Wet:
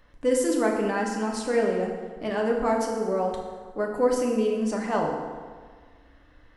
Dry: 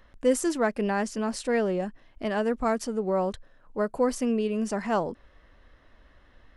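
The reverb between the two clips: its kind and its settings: FDN reverb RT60 1.6 s, low-frequency decay 1×, high-frequency decay 0.65×, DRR -0.5 dB; gain -2 dB

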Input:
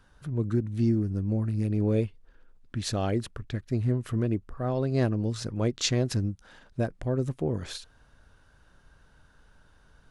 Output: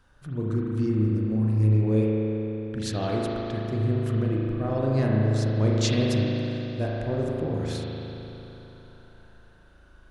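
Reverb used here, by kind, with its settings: spring tank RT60 3.6 s, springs 37 ms, chirp 50 ms, DRR -4 dB; gain -2 dB

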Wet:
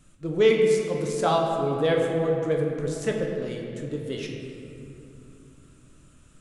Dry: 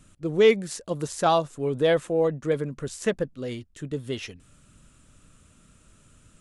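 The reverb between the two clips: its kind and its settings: shoebox room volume 120 m³, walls hard, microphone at 0.38 m; gain -3 dB

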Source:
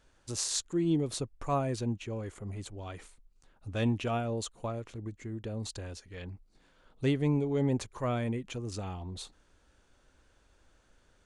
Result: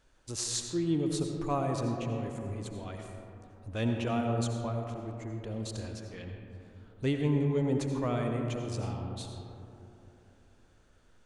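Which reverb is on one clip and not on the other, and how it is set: digital reverb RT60 3.1 s, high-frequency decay 0.3×, pre-delay 45 ms, DRR 3 dB; gain -1.5 dB

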